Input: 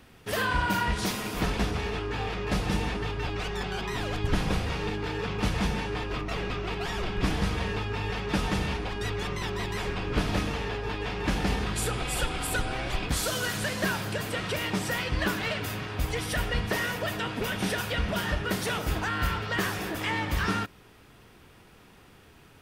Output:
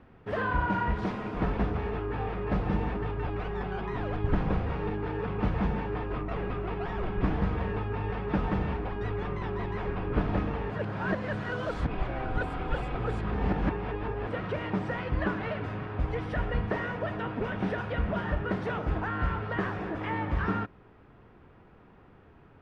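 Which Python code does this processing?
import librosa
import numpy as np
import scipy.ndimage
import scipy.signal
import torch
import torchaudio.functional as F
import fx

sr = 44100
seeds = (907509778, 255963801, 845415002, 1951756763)

y = fx.edit(x, sr, fx.reverse_span(start_s=10.7, length_s=3.57), tone=tone)
y = scipy.signal.sosfilt(scipy.signal.butter(2, 1400.0, 'lowpass', fs=sr, output='sos'), y)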